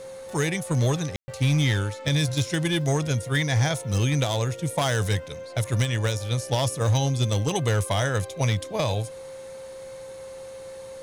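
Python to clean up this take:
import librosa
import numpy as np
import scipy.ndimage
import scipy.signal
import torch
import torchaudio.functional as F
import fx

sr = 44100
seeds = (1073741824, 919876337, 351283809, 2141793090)

y = fx.fix_declip(x, sr, threshold_db=-16.5)
y = fx.notch(y, sr, hz=530.0, q=30.0)
y = fx.fix_ambience(y, sr, seeds[0], print_start_s=9.37, print_end_s=9.87, start_s=1.16, end_s=1.28)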